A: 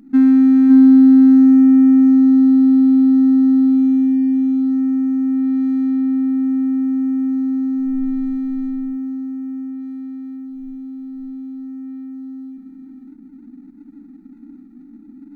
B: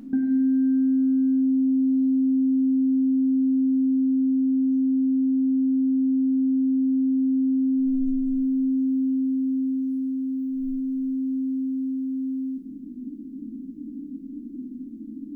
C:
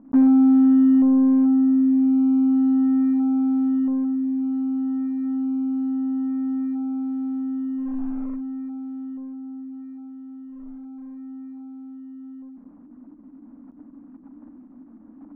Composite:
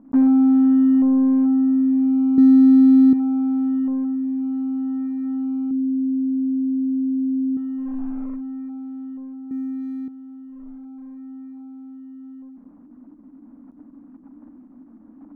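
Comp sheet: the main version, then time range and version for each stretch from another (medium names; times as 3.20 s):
C
2.38–3.13 s: from A
5.71–7.57 s: from B
9.51–10.08 s: from A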